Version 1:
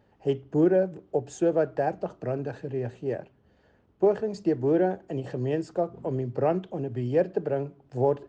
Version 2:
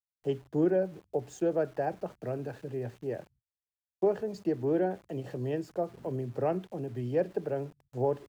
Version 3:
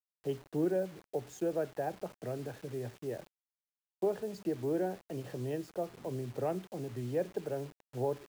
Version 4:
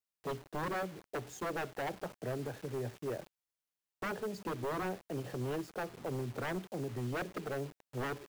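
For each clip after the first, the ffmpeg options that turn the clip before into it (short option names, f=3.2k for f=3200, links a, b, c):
-filter_complex "[0:a]agate=range=-40dB:threshold=-53dB:ratio=16:detection=peak,acrossover=split=130[a][b];[b]aeval=exprs='val(0)*gte(abs(val(0)),0.00355)':c=same[c];[a][c]amix=inputs=2:normalize=0,volume=-5dB"
-filter_complex "[0:a]asplit=2[a][b];[b]acompressor=threshold=-40dB:ratio=4,volume=-3dB[c];[a][c]amix=inputs=2:normalize=0,acrusher=bits=7:mix=0:aa=0.000001,volume=-6dB"
-af "aeval=exprs='0.0237*(abs(mod(val(0)/0.0237+3,4)-2)-1)':c=same,volume=1.5dB"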